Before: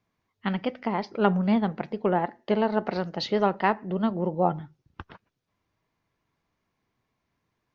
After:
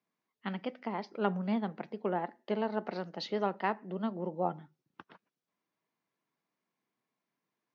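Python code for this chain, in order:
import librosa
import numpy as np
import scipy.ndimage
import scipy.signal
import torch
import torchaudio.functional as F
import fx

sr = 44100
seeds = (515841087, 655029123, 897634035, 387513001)

y = scipy.signal.sosfilt(scipy.signal.butter(4, 170.0, 'highpass', fs=sr, output='sos'), x)
y = F.gain(torch.from_numpy(y), -8.5).numpy()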